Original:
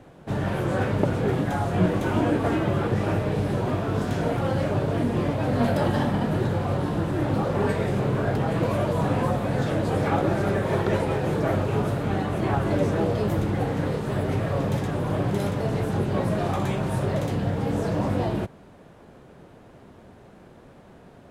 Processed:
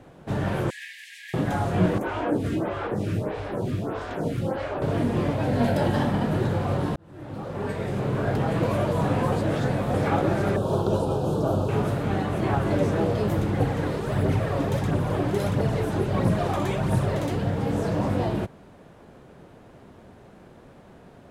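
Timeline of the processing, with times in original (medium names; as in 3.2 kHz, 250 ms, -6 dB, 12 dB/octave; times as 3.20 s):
0.70–1.34 s: brick-wall FIR high-pass 1.6 kHz
1.98–4.82 s: lamp-driven phase shifter 1.6 Hz
5.43–5.92 s: band-stop 1.2 kHz, Q 5.1
6.96–8.38 s: fade in
9.32–9.94 s: reverse
10.56–11.69 s: Butterworth band-stop 2 kHz, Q 1
13.60–17.43 s: phaser 1.5 Hz, delay 3.5 ms, feedback 42%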